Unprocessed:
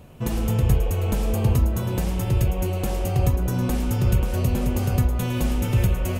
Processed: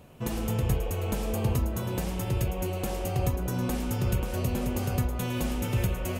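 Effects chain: low shelf 140 Hz -7 dB; gain -3 dB

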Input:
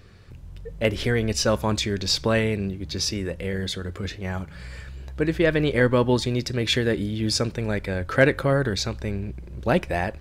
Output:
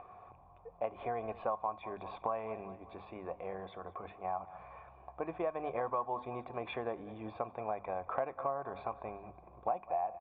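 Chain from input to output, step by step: upward compressor, threshold -33 dBFS; vocal tract filter a; tilt +2.5 dB/oct; notches 50/100/150/200/250 Hz; on a send: feedback echo 0.194 s, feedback 47%, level -20 dB; on the sum: compressor 5:1, threshold -45 dBFS, peak gain reduction 15.5 dB; gain +12.5 dB

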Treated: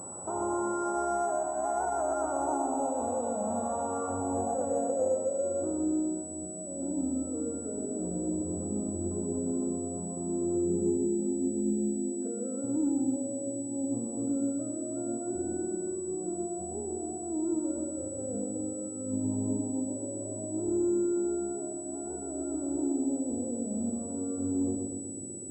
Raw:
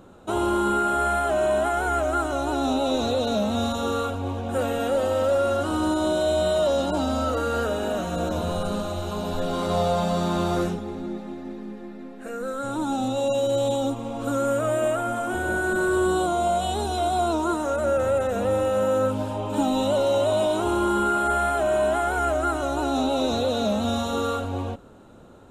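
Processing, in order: HPF 87 Hz; negative-ratio compressor -29 dBFS, ratio -1; limiter -23.5 dBFS, peak gain reduction 9.5 dB; darkening echo 0.123 s, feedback 62%, low-pass 1800 Hz, level -4 dB; low-pass sweep 890 Hz -> 330 Hz, 4.03–6.25; pulse-width modulation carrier 7900 Hz; gain -4.5 dB

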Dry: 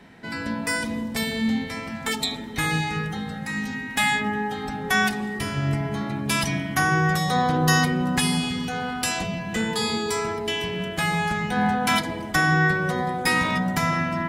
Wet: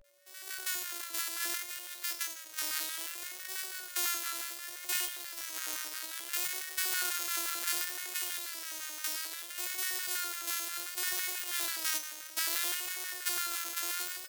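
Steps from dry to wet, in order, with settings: sample sorter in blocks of 128 samples; AGC gain up to 10.5 dB; vibrato 0.31 Hz 85 cents; LFO high-pass square 5.9 Hz 350–1500 Hz; differentiator; resonator 160 Hz, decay 0.62 s, harmonics odd, mix 70%; vibrato 0.64 Hz 100 cents; whine 570 Hz -64 dBFS; bell 200 Hz -7 dB 2.7 oct; gain -1.5 dB

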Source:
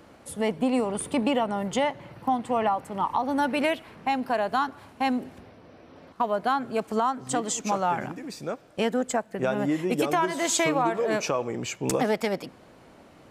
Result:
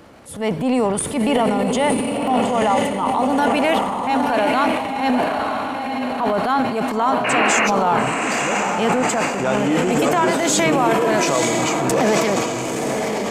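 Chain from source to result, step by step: painted sound noise, 7.24–7.68, 290–2900 Hz -25 dBFS; diffused feedback echo 0.935 s, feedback 50%, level -4 dB; transient shaper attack -7 dB, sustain +8 dB; gain +6.5 dB

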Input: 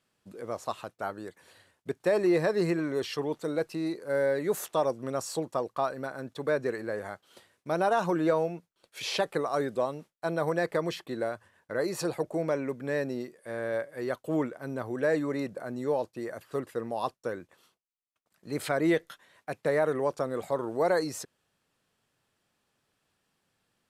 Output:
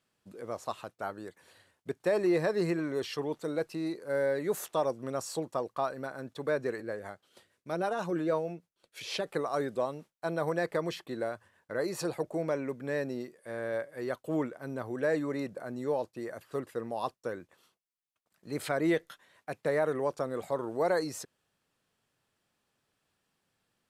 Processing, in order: 6.8–9.27 rotary speaker horn 6.3 Hz; gain -2.5 dB

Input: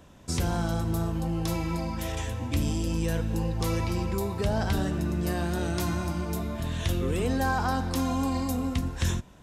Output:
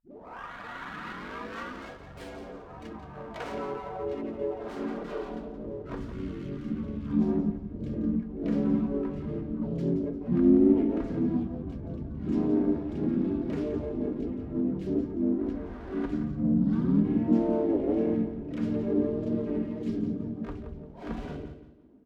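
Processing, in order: tape start at the beginning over 0.83 s; reverb removal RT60 1.8 s; low shelf 80 Hz -8 dB; comb 1.8 ms, depth 60%; dynamic EQ 1500 Hz, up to -4 dB, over -52 dBFS, Q 1.6; in parallel at +2.5 dB: limiter -28.5 dBFS, peak gain reduction 11.5 dB; on the sum: band-pass sweep 3500 Hz -> 650 Hz, 0.17–2.92; harmoniser -4 st -8 dB, +5 st -4 dB; on a send: feedback echo 74 ms, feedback 27%, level -10.5 dB; on the sum: speed mistake 78 rpm record played at 33 rpm; running maximum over 5 samples; gain +5 dB

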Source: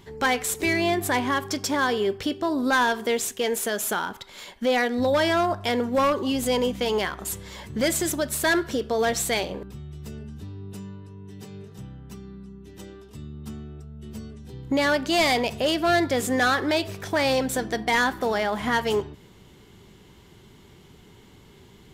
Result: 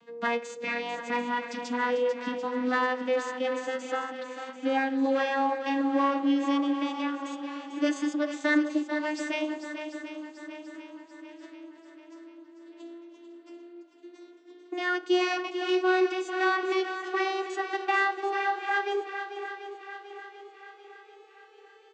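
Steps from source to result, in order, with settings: vocoder on a gliding note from A#3, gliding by +11 st; LPF 2600 Hz 6 dB/oct; tilt shelf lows -6 dB; comb 6.2 ms, depth 54%; on a send: swung echo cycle 0.739 s, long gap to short 1.5:1, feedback 47%, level -9.5 dB

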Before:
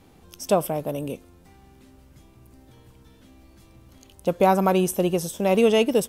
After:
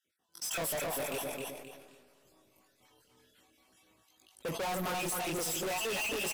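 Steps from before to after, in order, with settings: random spectral dropouts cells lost 39%; HPF 1200 Hz 6 dB/oct; in parallel at -4 dB: sample gate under -43 dBFS; on the sum: AGC gain up to 14.5 dB; gate -41 dBFS, range -17 dB; chorus voices 2, 0.49 Hz, delay 21 ms, depth 3.1 ms; speed mistake 25 fps video run at 24 fps; feedback echo 0.264 s, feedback 25%, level -9 dB; soft clip -35.5 dBFS, distortion -1 dB; on a send at -20 dB: reverb RT60 3.7 s, pre-delay 4 ms; on the sum: sustainer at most 49 dB/s; gain +2 dB

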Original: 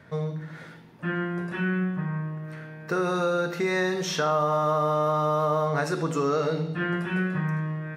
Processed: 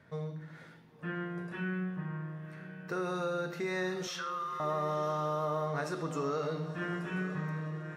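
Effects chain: 4.07–4.6 elliptic high-pass 1100 Hz, stop band 40 dB; diffused feedback echo 1.03 s, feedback 41%, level -13.5 dB; gain -9 dB

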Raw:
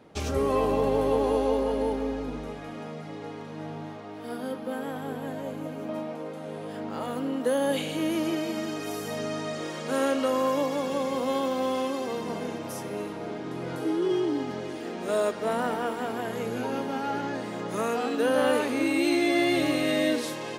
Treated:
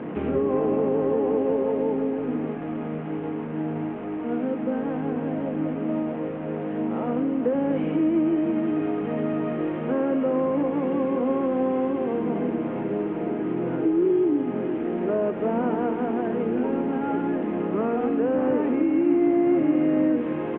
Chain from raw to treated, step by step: delta modulation 16 kbps, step -33.5 dBFS; HPF 120 Hz; bell 290 Hz +12 dB 2.1 oct; notch 570 Hz, Q 12; compressor 2.5:1, threshold -20 dBFS, peak gain reduction 7 dB; air absorption 470 m; frequency-shifting echo 0.12 s, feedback 59%, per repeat -55 Hz, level -23.5 dB; reverb RT60 0.70 s, pre-delay 6 ms, DRR 12 dB

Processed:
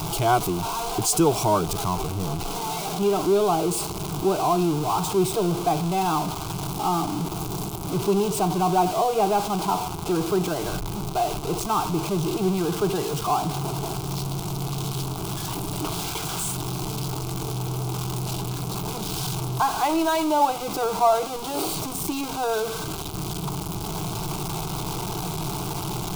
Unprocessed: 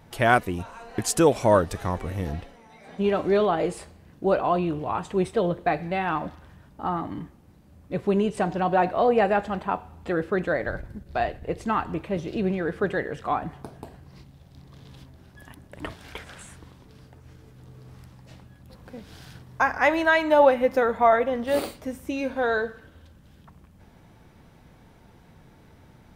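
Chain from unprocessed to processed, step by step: zero-crossing step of -20.5 dBFS; fixed phaser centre 360 Hz, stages 8

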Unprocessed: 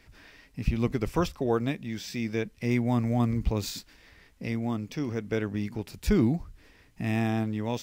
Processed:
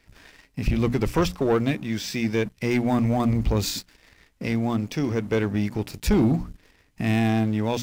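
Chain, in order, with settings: notches 60/120/180/240/300 Hz; sample leveller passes 2

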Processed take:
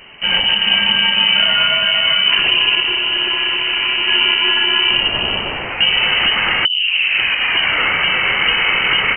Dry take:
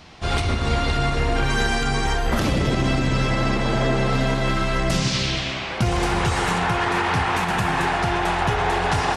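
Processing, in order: 2.8–4.08 tube stage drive 18 dB, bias 0.4; 6.65 tape start 1.18 s; inverted band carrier 3000 Hz; gain +5.5 dB

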